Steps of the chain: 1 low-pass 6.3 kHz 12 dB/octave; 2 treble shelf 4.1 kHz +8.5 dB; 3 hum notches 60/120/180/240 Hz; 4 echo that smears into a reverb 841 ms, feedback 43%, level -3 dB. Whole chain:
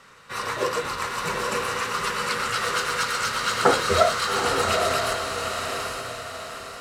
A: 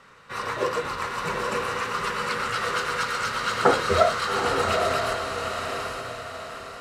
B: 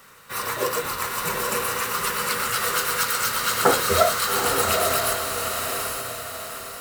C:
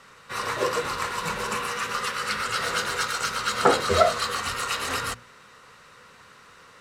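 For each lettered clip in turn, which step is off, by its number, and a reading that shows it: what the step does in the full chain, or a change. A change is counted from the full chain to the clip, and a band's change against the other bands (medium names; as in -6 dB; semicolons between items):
2, 8 kHz band -6.0 dB; 1, 8 kHz band +6.0 dB; 4, echo-to-direct -2.0 dB to none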